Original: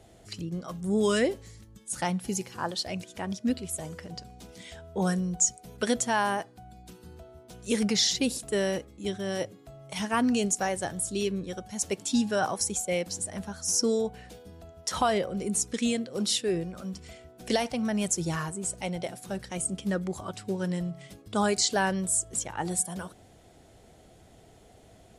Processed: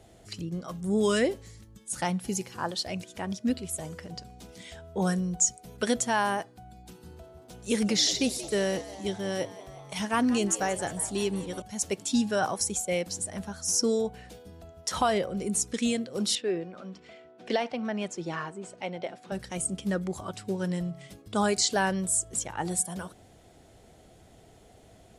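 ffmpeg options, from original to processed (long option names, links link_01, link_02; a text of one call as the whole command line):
ffmpeg -i in.wav -filter_complex "[0:a]asettb=1/sr,asplit=3[link_01][link_02][link_03];[link_01]atrim=end=6.674[link_04];[link_02]atrim=start=6.67:end=11.62,asetpts=PTS-STARTPTS,afade=type=in:duration=0.004:curve=qsin,afade=type=out:start_time=4.946:duration=0.004:curve=qsin,asplit=8[link_05][link_06][link_07][link_08][link_09][link_10][link_11][link_12];[link_06]adelay=180,afreqshift=94,volume=-16dB[link_13];[link_07]adelay=360,afreqshift=188,volume=-19.9dB[link_14];[link_08]adelay=540,afreqshift=282,volume=-23.8dB[link_15];[link_09]adelay=720,afreqshift=376,volume=-27.6dB[link_16];[link_10]adelay=900,afreqshift=470,volume=-31.5dB[link_17];[link_11]adelay=1080,afreqshift=564,volume=-35.4dB[link_18];[link_12]adelay=1260,afreqshift=658,volume=-39.3dB[link_19];[link_05][link_13][link_14][link_15][link_16][link_17][link_18][link_19]amix=inputs=8:normalize=0,atrim=end_sample=218295[link_20];[link_03]atrim=start=11.616[link_21];[link_04][link_20]acrossfade=duration=0.004:curve1=hsin:curve2=qsin[link_22];[link_22][link_21]acrossfade=duration=0.004:curve1=qsin:curve2=hsin,asettb=1/sr,asplit=3[link_23][link_24][link_25];[link_23]atrim=end=16.354[link_26];[link_24]atrim=start=16.35:end=19.32,asetpts=PTS-STARTPTS,afade=type=in:duration=0.004:curve=qsin,afade=type=out:start_time=2.966:duration=0.004:curve=qsin,highpass=250,lowpass=3300[link_27];[link_25]atrim=start=19.316[link_28];[link_26][link_27]acrossfade=duration=0.004:curve1=hsin:curve2=qsin[link_29];[link_29][link_28]acrossfade=duration=0.004:curve1=qsin:curve2=hsin" out.wav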